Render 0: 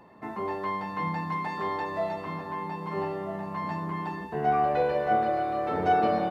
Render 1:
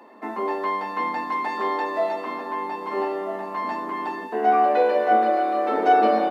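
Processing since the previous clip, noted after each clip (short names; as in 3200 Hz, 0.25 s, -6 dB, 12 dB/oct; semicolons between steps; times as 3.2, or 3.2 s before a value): elliptic high-pass 230 Hz, stop band 40 dB; gain +6.5 dB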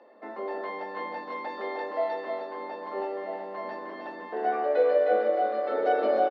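speaker cabinet 230–4800 Hz, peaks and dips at 260 Hz -4 dB, 560 Hz +10 dB, 990 Hz -7 dB, 2600 Hz -5 dB; echo 0.308 s -5 dB; on a send at -14.5 dB: reverb RT60 0.40 s, pre-delay 3 ms; on the sum: gain -7.5 dB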